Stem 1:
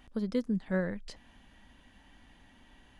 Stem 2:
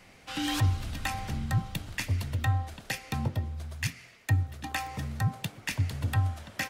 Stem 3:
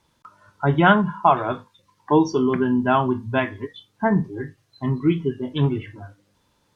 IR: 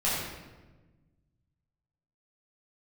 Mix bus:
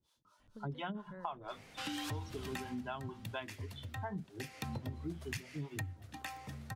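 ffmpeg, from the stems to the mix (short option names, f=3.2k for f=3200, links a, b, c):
-filter_complex "[0:a]acompressor=threshold=-46dB:ratio=1.5,adelay=400,volume=-12.5dB[a];[1:a]highpass=86,adelay=1500,volume=10.5dB,afade=t=out:st=2.52:d=0.28:silence=0.281838,afade=t=in:st=4.4:d=0.4:silence=0.237137,afade=t=out:st=5.73:d=0.25:silence=0.334965[b];[2:a]highshelf=f=2.7k:t=q:w=1.5:g=6.5,acrossover=split=470[c][d];[c]aeval=exprs='val(0)*(1-1/2+1/2*cos(2*PI*4.3*n/s))':c=same[e];[d]aeval=exprs='val(0)*(1-1/2-1/2*cos(2*PI*4.3*n/s))':c=same[f];[e][f]amix=inputs=2:normalize=0,volume=-11.5dB[g];[a][b][g]amix=inputs=3:normalize=0,acompressor=threshold=-38dB:ratio=6"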